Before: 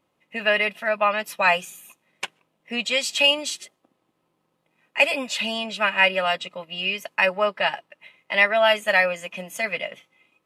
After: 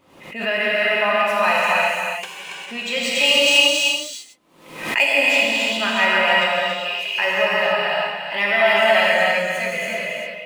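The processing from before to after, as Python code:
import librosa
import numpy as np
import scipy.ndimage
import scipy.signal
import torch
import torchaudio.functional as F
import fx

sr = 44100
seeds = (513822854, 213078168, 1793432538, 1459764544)

y = scipy.ndimage.median_filter(x, 3, mode='constant')
y = fx.high_shelf(y, sr, hz=2200.0, db=6.5, at=(3.18, 5.05))
y = fx.highpass(y, sr, hz=730.0, slope=12, at=(6.5, 7.09))
y = y + 10.0 ** (-5.0 / 20.0) * np.pad(y, (int(280 * sr / 1000.0), 0))[:len(y)]
y = fx.rev_gated(y, sr, seeds[0], gate_ms=430, shape='flat', drr_db=-6.5)
y = fx.pre_swell(y, sr, db_per_s=85.0)
y = y * 10.0 ** (-4.0 / 20.0)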